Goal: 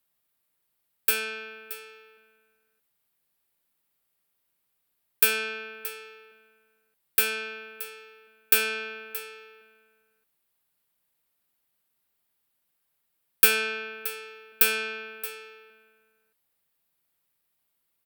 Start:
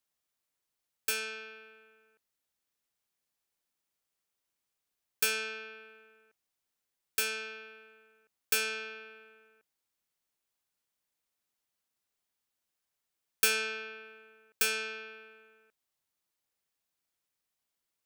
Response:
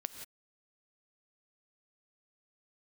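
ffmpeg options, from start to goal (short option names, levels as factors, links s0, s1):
-af "equalizer=f=160:t=o:w=0.67:g=4,equalizer=f=6300:t=o:w=0.67:g=-9,equalizer=f=16000:t=o:w=0.67:g=8,aecho=1:1:625:0.178,volume=2"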